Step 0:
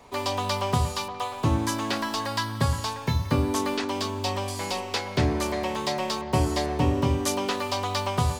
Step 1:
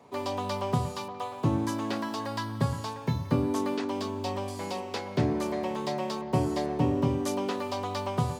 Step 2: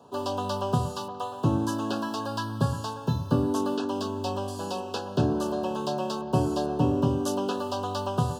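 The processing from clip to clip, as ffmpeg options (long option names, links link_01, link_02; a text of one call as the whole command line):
ffmpeg -i in.wav -af "highpass=frequency=110:width=0.5412,highpass=frequency=110:width=1.3066,tiltshelf=frequency=970:gain=5,volume=-5dB" out.wav
ffmpeg -i in.wav -af "asuperstop=centerf=2100:order=20:qfactor=2.4,volume=2dB" out.wav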